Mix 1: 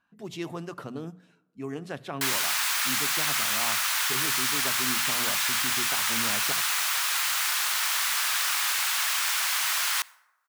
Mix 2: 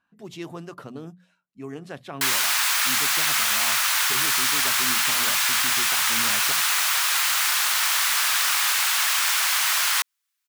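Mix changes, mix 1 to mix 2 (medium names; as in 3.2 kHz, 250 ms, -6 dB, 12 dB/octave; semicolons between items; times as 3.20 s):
background +5.5 dB; reverb: off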